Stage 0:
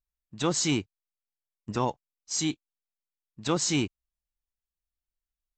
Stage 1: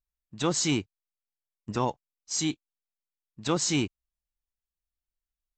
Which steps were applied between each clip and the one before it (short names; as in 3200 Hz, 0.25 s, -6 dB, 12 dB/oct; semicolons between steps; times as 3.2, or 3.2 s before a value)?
nothing audible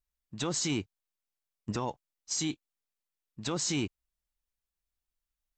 limiter -24 dBFS, peak gain reduction 10 dB; gain +1.5 dB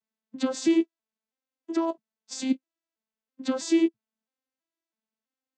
arpeggiated vocoder minor triad, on A3, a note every 0.328 s; gain +8.5 dB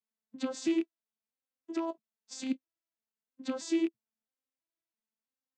rattling part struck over -35 dBFS, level -26 dBFS; gain -7.5 dB